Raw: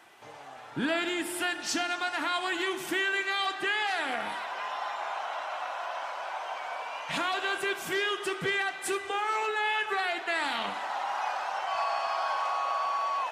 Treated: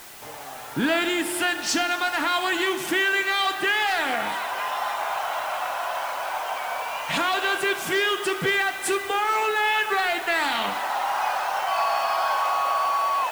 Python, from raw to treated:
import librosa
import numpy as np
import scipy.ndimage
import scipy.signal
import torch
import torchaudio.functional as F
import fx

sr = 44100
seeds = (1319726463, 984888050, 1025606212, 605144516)

p1 = 10.0 ** (-26.0 / 20.0) * np.tanh(x / 10.0 ** (-26.0 / 20.0))
p2 = x + (p1 * 10.0 ** (-5.0 / 20.0))
p3 = fx.quant_dither(p2, sr, seeds[0], bits=8, dither='triangular')
y = p3 * 10.0 ** (3.5 / 20.0)